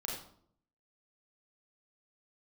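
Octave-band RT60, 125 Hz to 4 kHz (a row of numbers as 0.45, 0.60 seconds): 0.85, 0.80, 0.65, 0.55, 0.45, 0.40 seconds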